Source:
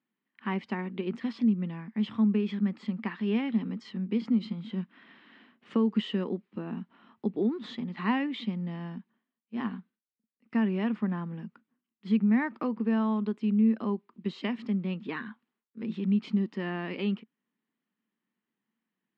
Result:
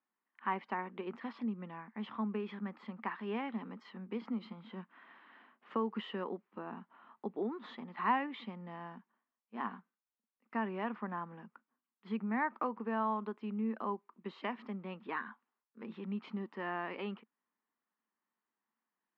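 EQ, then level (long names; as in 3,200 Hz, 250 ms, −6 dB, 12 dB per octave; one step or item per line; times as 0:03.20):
resonant band-pass 1,000 Hz, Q 1.4
+3.0 dB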